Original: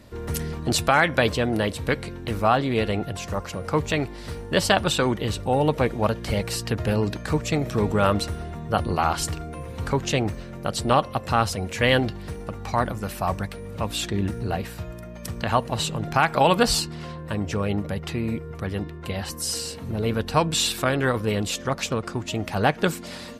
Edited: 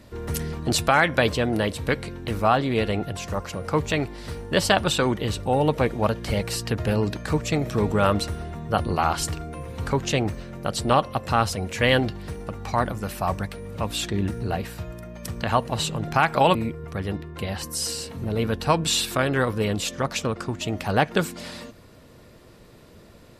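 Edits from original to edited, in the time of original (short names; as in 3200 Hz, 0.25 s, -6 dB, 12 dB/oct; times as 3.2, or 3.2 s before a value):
16.55–18.22 cut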